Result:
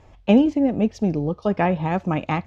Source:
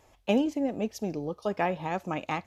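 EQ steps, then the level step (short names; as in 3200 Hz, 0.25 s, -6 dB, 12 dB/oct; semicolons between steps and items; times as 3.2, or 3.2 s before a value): air absorption 90 m; tone controls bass +9 dB, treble -3 dB; +6.5 dB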